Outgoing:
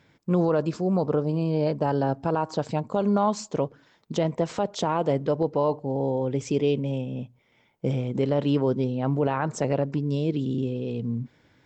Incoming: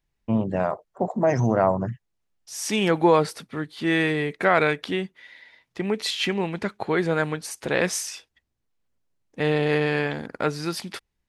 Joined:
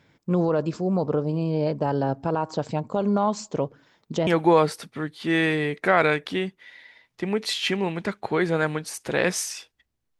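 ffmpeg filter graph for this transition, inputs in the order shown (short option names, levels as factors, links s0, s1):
-filter_complex "[0:a]apad=whole_dur=10.19,atrim=end=10.19,atrim=end=4.272[s0];[1:a]atrim=start=2.838:end=8.76[s1];[s0][s1]acrossfade=d=0.004:c1=hsin:c2=hsin"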